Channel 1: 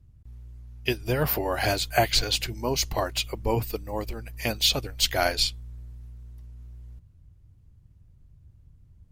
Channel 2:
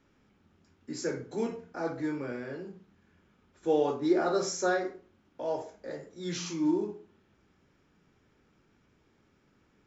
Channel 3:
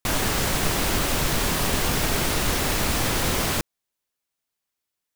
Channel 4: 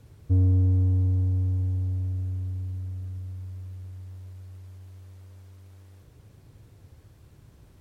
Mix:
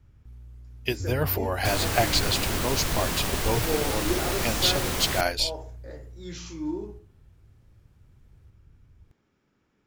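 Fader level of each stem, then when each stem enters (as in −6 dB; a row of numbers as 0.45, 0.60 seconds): −1.5, −4.0, −5.0, −12.5 decibels; 0.00, 0.00, 1.60, 0.70 seconds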